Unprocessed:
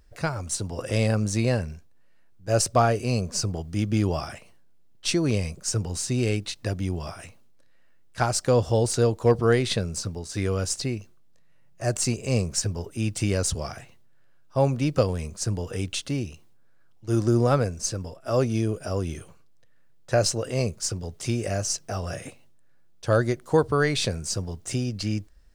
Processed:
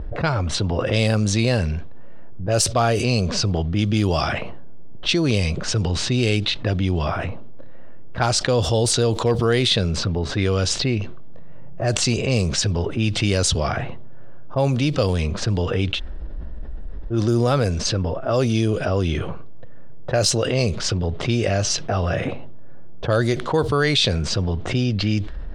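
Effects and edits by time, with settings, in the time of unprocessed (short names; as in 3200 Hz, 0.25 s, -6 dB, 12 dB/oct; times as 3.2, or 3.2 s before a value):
15.95–17.15 room tone, crossfade 0.10 s
whole clip: low-pass opened by the level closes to 740 Hz, open at -18 dBFS; bell 3500 Hz +10 dB 0.77 oct; fast leveller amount 70%; gain -1.5 dB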